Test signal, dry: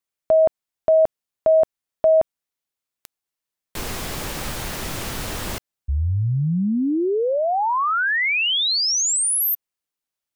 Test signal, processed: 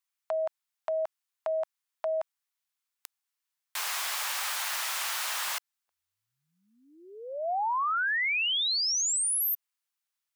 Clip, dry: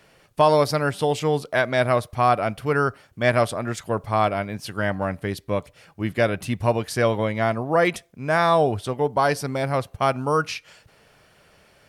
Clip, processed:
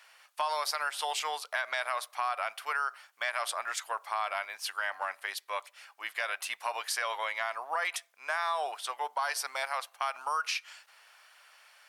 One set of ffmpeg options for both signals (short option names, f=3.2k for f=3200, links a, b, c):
-af "highpass=f=880:w=0.5412,highpass=f=880:w=1.3066,acompressor=threshold=-27dB:ratio=6:attack=4.9:release=87:knee=1:detection=rms"